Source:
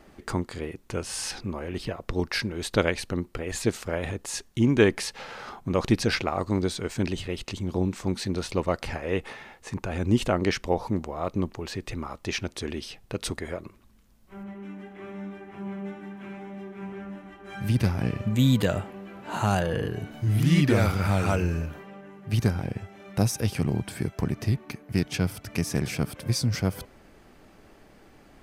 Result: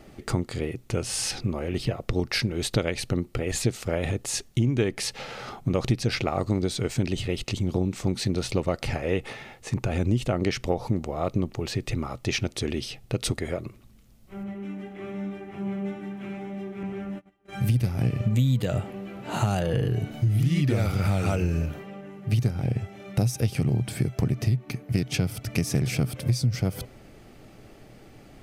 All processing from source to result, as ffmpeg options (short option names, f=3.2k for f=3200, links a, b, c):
-filter_complex "[0:a]asettb=1/sr,asplit=3[a][b][c];[a]atrim=end=16.834[d];[b]atrim=start=16.83:end=18.19,asetpts=PTS-STARTPTS,afade=t=in:d=0.004:c=qsin,afade=t=out:st=1.356:d=0.004:c=qsin,agate=range=-26dB:threshold=-42dB:ratio=16:release=100:detection=peak,adynamicequalizer=threshold=0.00141:dfrequency=7900:dqfactor=0.7:tfrequency=7900:tqfactor=0.7:attack=5:release=100:ratio=0.375:range=3:mode=boostabove:tftype=highshelf[e];[c]atrim=start=18.186[f];[d][e]acrossfade=d=0.004:c1=hsin:c2=qsin[g];[g][f]acrossfade=d=0.004:c1=qsin:c2=hsin,equalizer=f=125:t=o:w=0.33:g=10,equalizer=f=1k:t=o:w=0.33:g=-8,equalizer=f=1.6k:t=o:w=0.33:g=-6,acompressor=threshold=-24dB:ratio=6,volume=4dB"